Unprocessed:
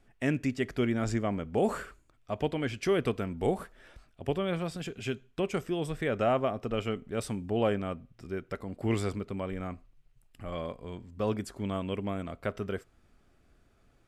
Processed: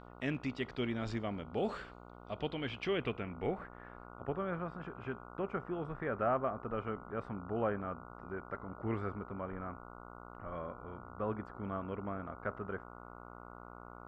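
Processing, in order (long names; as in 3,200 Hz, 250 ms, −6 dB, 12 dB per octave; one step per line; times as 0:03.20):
hum with harmonics 60 Hz, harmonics 24, −46 dBFS −2 dB per octave
low-pass filter sweep 3,900 Hz → 1,400 Hz, 0:02.43–0:04.26
level −8 dB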